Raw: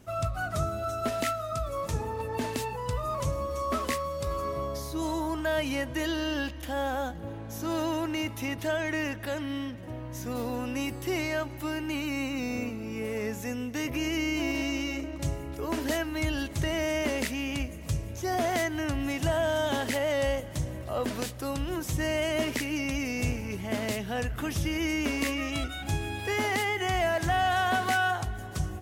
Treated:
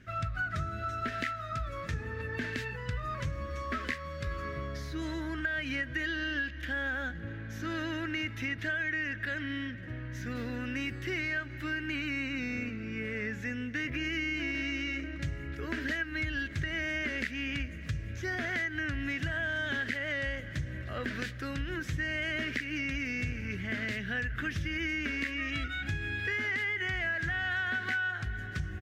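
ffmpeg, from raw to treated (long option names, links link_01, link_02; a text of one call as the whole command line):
ffmpeg -i in.wav -filter_complex "[0:a]asettb=1/sr,asplit=3[link_01][link_02][link_03];[link_01]atrim=end=12.704[link_04];[link_02]atrim=start=12.7:end=14.05,asetpts=PTS-STARTPTS,afade=type=in:duration=0.004:curve=qsin,afade=type=out:start_time=1.346:duration=0.004:curve=qsin,highshelf=frequency=6800:gain=-5.5[link_05];[link_03]atrim=start=14.046[link_06];[link_04][link_05]acrossfade=duration=0.004:curve1=hsin:curve2=qsin[link_07];[link_07][link_06]acrossfade=duration=0.004:curve1=qsin:curve2=hsin,firequalizer=gain_entry='entry(120,0);entry(890,-16);entry(1600,11);entry(2600,1);entry(9300,-18)':delay=0.05:min_phase=1,acompressor=threshold=-30dB:ratio=6" out.wav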